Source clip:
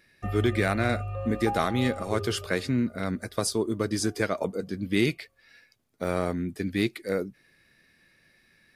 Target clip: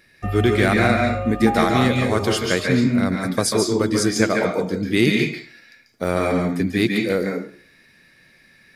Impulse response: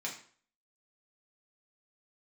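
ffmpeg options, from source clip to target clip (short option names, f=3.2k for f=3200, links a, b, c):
-filter_complex "[0:a]asplit=2[a][b];[1:a]atrim=start_sample=2205,adelay=140[c];[b][c]afir=irnorm=-1:irlink=0,volume=-2.5dB[d];[a][d]amix=inputs=2:normalize=0,volume=6.5dB"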